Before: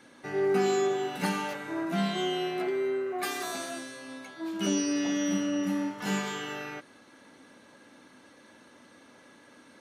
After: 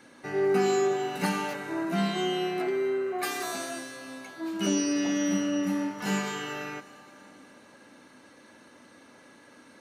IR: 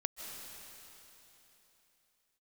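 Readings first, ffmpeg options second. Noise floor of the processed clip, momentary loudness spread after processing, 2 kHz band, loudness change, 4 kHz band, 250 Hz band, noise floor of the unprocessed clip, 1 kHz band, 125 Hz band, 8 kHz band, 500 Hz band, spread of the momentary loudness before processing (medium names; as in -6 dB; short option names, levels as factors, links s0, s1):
-55 dBFS, 12 LU, +1.5 dB, +1.5 dB, +0.5 dB, +1.5 dB, -56 dBFS, +1.5 dB, +1.5 dB, +1.5 dB, +1.5 dB, 12 LU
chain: -filter_complex "[0:a]bandreject=f=3400:w=12,asplit=2[s0][s1];[1:a]atrim=start_sample=2205,highshelf=f=11000:g=7[s2];[s1][s2]afir=irnorm=-1:irlink=0,volume=0.2[s3];[s0][s3]amix=inputs=2:normalize=0"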